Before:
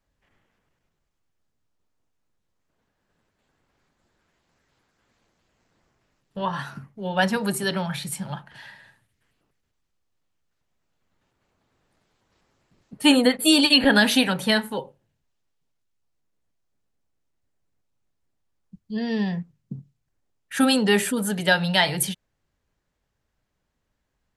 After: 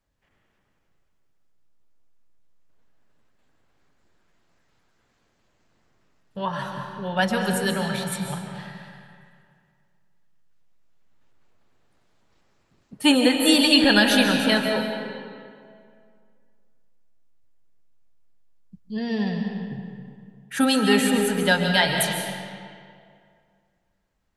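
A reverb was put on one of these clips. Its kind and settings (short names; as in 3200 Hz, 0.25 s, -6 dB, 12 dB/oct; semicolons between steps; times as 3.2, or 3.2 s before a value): digital reverb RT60 2.2 s, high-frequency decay 0.7×, pre-delay 0.1 s, DRR 3 dB; gain -1 dB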